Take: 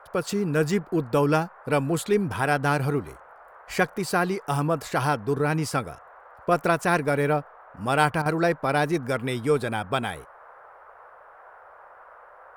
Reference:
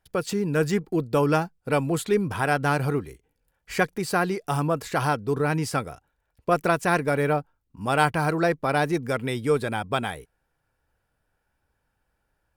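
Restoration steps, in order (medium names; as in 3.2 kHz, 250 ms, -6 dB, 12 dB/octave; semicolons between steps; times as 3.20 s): interpolate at 8.22 s, 36 ms; noise print and reduce 25 dB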